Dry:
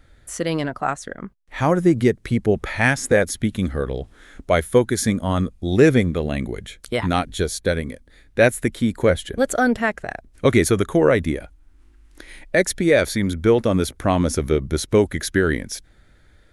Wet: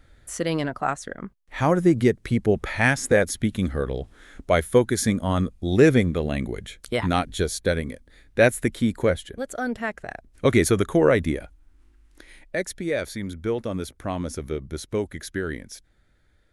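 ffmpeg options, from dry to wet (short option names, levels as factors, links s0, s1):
-af "volume=2.66,afade=t=out:st=8.9:d=0.55:silence=0.298538,afade=t=in:st=9.45:d=1.2:silence=0.298538,afade=t=out:st=11.36:d=1.28:silence=0.398107"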